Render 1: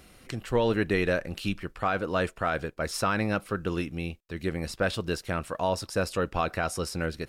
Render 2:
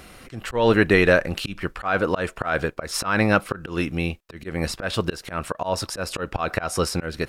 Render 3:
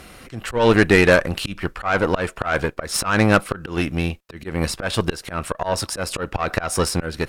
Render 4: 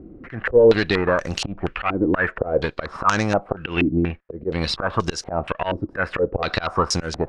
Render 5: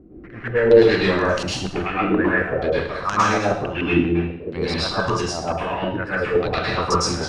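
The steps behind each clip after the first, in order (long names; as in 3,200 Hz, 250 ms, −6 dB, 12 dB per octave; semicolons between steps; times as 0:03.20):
parametric band 1,200 Hz +4.5 dB 2.3 octaves; volume swells 179 ms; level +7.5 dB
harmonic generator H 8 −23 dB, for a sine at −3 dBFS; dynamic equaliser 9,100 Hz, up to +4 dB, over −47 dBFS, Q 2.2; level +2.5 dB
downward compressor 3 to 1, threshold −19 dBFS, peak gain reduction 8 dB; low-pass on a step sequencer 4.2 Hz 320–6,200 Hz
dense smooth reverb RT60 0.63 s, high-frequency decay 1×, pre-delay 95 ms, DRR −7.5 dB; level −6.5 dB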